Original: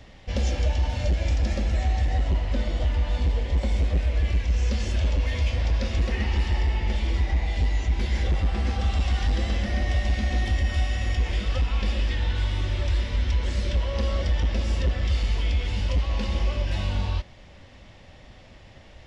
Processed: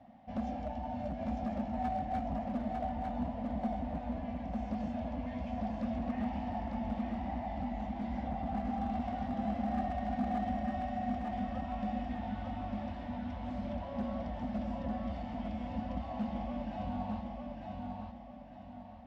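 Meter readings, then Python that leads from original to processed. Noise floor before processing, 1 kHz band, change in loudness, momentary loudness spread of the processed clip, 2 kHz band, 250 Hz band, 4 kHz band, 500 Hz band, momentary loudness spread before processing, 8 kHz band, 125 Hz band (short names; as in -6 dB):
-48 dBFS, +1.5 dB, -11.5 dB, 5 LU, -16.5 dB, +0.5 dB, -22.5 dB, -6.0 dB, 2 LU, n/a, -18.0 dB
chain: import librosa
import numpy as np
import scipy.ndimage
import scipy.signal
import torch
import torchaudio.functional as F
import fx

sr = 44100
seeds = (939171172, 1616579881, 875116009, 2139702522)

y = fx.double_bandpass(x, sr, hz=410.0, octaves=1.6)
y = np.clip(10.0 ** (34.5 / 20.0) * y, -1.0, 1.0) / 10.0 ** (34.5 / 20.0)
y = fx.echo_feedback(y, sr, ms=901, feedback_pct=37, wet_db=-3.5)
y = y * librosa.db_to_amplitude(4.5)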